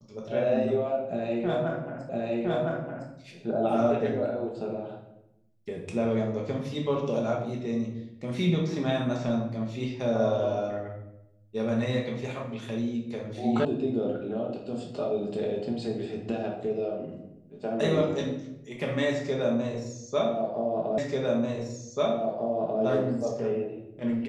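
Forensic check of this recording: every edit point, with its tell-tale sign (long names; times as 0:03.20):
0:02.09: the same again, the last 1.01 s
0:13.65: cut off before it has died away
0:20.98: the same again, the last 1.84 s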